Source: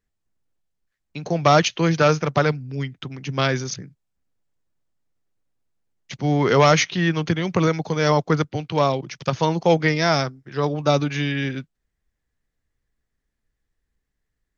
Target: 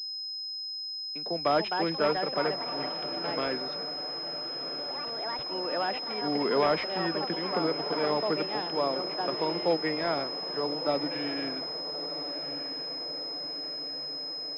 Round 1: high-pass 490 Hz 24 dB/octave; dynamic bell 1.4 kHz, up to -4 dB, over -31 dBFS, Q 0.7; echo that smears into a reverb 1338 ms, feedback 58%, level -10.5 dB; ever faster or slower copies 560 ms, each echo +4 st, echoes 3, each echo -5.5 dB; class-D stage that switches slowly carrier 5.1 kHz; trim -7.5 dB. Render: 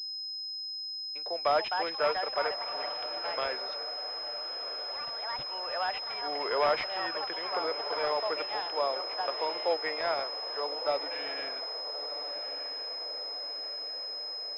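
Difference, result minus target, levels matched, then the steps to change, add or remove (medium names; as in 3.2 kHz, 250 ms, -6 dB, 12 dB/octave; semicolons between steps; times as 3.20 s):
250 Hz band -13.5 dB
change: high-pass 230 Hz 24 dB/octave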